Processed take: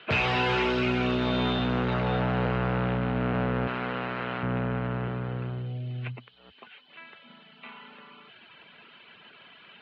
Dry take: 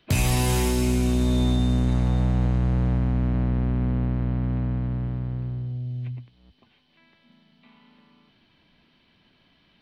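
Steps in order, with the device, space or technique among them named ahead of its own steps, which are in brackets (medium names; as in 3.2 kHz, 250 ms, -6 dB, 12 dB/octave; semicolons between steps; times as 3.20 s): reverb removal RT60 0.73 s; 3.67–4.43 s: tilt EQ +4 dB/octave; overdrive pedal into a guitar cabinet (overdrive pedal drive 26 dB, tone 2.3 kHz, clips at -11.5 dBFS; cabinet simulation 77–4000 Hz, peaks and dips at 290 Hz -7 dB, 440 Hz +5 dB, 1.4 kHz +8 dB, 2.7 kHz +6 dB); trim -5 dB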